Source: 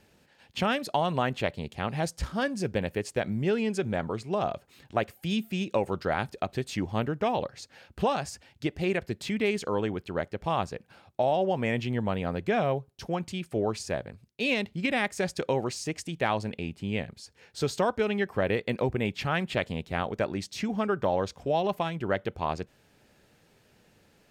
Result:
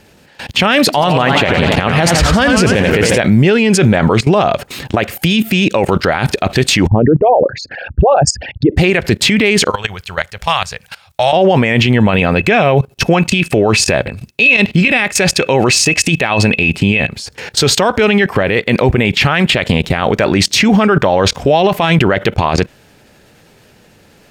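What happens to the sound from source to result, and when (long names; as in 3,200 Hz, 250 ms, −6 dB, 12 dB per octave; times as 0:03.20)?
0:00.79–0:03.18: feedback echo with a swinging delay time 88 ms, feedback 68%, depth 192 cents, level −9 dB
0:06.87–0:08.77: spectral envelope exaggerated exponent 3
0:09.70–0:11.33: guitar amp tone stack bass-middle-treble 10-0-10
0:11.96–0:17.16: hollow resonant body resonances 2,600 Hz, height 18 dB, ringing for 90 ms
whole clip: dynamic equaliser 2,400 Hz, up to +6 dB, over −46 dBFS, Q 0.77; output level in coarse steps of 20 dB; boost into a limiter +34.5 dB; level −1 dB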